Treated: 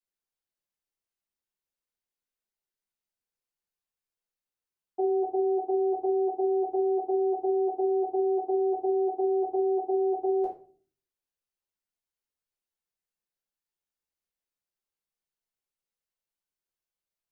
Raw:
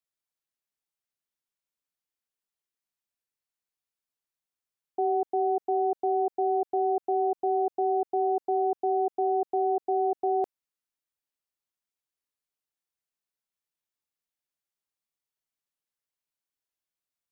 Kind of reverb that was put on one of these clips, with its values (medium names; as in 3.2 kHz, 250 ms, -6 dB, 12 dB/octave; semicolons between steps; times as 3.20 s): simulated room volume 36 m³, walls mixed, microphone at 1 m; trim -8.5 dB